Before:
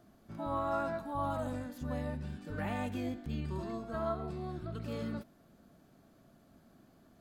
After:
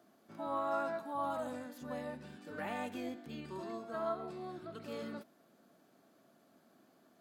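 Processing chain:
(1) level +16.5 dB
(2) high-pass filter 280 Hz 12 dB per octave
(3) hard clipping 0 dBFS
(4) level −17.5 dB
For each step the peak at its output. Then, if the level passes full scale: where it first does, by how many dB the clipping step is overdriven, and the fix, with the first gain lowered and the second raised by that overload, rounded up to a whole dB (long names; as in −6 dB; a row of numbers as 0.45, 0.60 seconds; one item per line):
−5.0, −5.5, −5.5, −23.0 dBFS
no step passes full scale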